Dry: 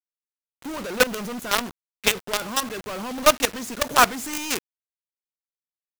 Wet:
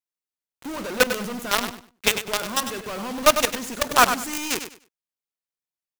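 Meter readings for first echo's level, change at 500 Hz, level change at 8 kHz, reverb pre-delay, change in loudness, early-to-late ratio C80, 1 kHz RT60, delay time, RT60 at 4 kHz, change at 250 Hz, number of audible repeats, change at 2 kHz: -9.5 dB, +0.5 dB, +0.5 dB, no reverb, +0.5 dB, no reverb, no reverb, 99 ms, no reverb, +0.5 dB, 2, +0.5 dB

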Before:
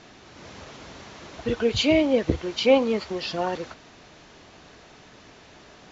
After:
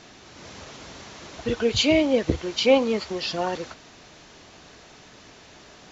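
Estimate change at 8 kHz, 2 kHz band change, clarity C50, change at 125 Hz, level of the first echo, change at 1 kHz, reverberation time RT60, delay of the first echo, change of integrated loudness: no reading, +1.0 dB, no reverb, 0.0 dB, no echo, 0.0 dB, no reverb, no echo, +0.5 dB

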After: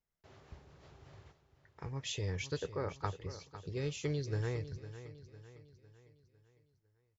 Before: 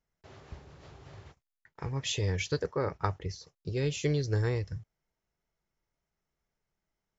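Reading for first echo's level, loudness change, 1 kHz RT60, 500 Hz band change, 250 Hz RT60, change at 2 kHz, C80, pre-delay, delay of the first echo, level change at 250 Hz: -13.0 dB, -7.0 dB, no reverb, -6.5 dB, no reverb, -7.0 dB, no reverb, no reverb, 504 ms, -6.5 dB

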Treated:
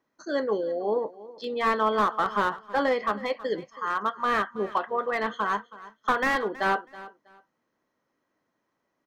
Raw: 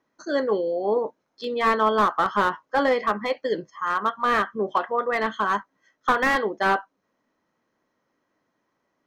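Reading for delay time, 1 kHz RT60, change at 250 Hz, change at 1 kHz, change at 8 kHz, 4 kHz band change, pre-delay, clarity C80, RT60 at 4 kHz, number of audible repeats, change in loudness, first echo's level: 323 ms, no reverb, -3.5 dB, -3.5 dB, no reading, -3.5 dB, no reverb, no reverb, no reverb, 2, -3.5 dB, -18.0 dB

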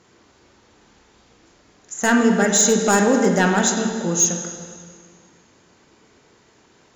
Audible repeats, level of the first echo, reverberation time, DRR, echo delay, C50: no echo, no echo, 2.0 s, 2.5 dB, no echo, 4.5 dB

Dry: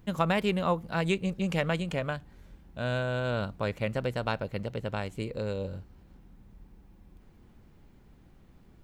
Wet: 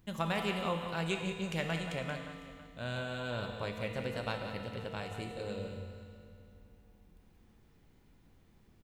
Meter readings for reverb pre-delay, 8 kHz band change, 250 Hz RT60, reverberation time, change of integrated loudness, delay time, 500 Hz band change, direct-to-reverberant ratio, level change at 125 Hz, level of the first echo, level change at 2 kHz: 4 ms, -1.5 dB, 2.6 s, 2.5 s, -6.5 dB, 179 ms, -7.0 dB, 2.0 dB, -7.0 dB, -10.0 dB, -4.5 dB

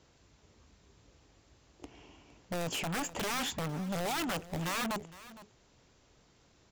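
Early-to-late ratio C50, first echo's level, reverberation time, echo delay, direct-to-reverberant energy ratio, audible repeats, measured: no reverb, -17.5 dB, no reverb, 461 ms, no reverb, 1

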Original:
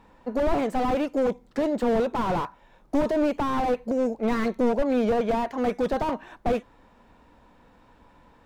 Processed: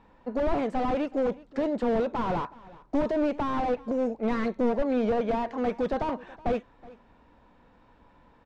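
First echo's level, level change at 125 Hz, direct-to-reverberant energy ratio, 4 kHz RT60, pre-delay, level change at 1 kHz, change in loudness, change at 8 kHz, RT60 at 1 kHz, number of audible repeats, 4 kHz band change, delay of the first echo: -21.0 dB, -2.5 dB, no reverb, no reverb, no reverb, -3.0 dB, -2.5 dB, no reading, no reverb, 1, -4.5 dB, 372 ms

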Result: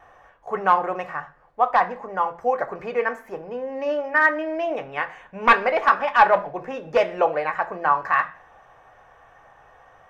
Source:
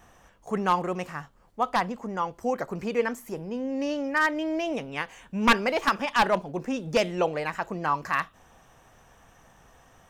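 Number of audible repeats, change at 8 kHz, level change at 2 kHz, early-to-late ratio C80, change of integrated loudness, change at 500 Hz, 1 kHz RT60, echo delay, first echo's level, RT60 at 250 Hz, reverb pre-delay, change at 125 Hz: no echo, under -10 dB, +6.0 dB, 21.0 dB, +5.5 dB, +5.0 dB, 0.40 s, no echo, no echo, 0.65 s, 3 ms, -7.0 dB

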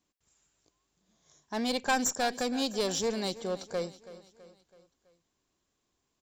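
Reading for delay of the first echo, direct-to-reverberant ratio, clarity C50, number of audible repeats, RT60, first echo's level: 328 ms, no reverb, no reverb, 4, no reverb, -16.5 dB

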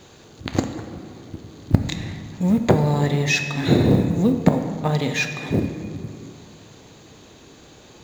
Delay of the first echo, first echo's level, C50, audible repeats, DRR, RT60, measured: no echo, no echo, 7.5 dB, no echo, 6.0 dB, 2.2 s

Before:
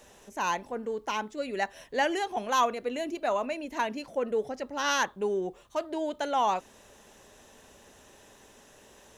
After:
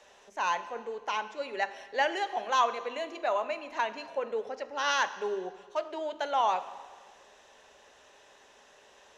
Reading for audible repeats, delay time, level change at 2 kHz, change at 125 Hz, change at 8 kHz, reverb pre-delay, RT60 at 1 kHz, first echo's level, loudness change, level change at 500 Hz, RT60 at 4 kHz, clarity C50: no echo, no echo, 0.0 dB, no reading, -5.0 dB, 4 ms, 1.6 s, no echo, -1.0 dB, -2.5 dB, 1.5 s, 13.5 dB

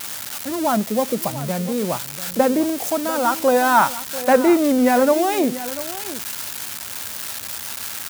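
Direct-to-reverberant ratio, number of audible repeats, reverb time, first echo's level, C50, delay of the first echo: no reverb, 1, no reverb, -14.5 dB, no reverb, 691 ms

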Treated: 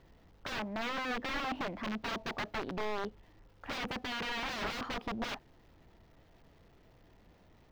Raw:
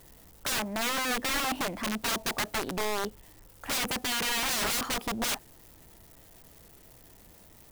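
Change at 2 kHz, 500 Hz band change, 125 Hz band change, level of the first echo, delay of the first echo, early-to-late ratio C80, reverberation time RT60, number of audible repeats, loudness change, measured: -6.0 dB, -4.5 dB, -4.0 dB, no echo, no echo, no reverb, no reverb, no echo, -8.0 dB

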